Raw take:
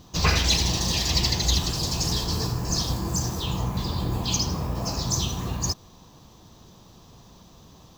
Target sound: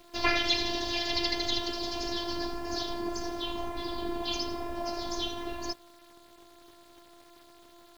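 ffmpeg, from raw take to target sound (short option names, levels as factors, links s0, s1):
-af "highpass=140,equalizer=f=260:t=q:w=4:g=-9,equalizer=f=1100:t=q:w=4:g=-8,equalizer=f=2600:t=q:w=4:g=-5,equalizer=f=3900:t=q:w=4:g=-4,lowpass=f=4000:w=0.5412,lowpass=f=4000:w=1.3066,afftfilt=real='hypot(re,im)*cos(PI*b)':imag='0':win_size=512:overlap=0.75,acrusher=bits=9:mix=0:aa=0.000001,volume=1.68"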